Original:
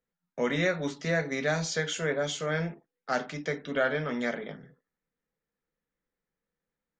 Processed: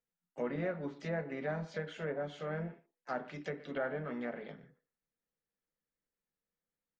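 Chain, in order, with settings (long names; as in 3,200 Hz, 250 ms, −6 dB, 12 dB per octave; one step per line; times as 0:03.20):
far-end echo of a speakerphone 120 ms, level −18 dB
treble cut that deepens with the level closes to 1,300 Hz, closed at −26 dBFS
pitch-shifted copies added +4 semitones −13 dB
level −8 dB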